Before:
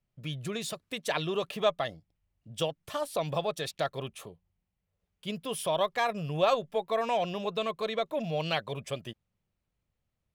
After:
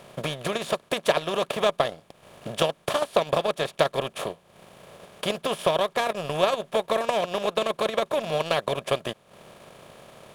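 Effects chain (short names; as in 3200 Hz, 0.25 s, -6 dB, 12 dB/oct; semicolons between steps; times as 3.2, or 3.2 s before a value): per-bin compression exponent 0.4; transient shaper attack +7 dB, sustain -11 dB; gain -3 dB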